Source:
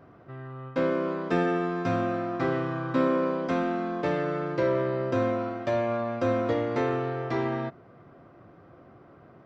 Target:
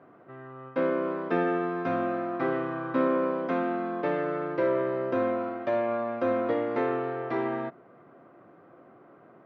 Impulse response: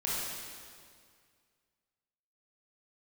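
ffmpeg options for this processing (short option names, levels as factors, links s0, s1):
-af "highpass=220,lowpass=2500"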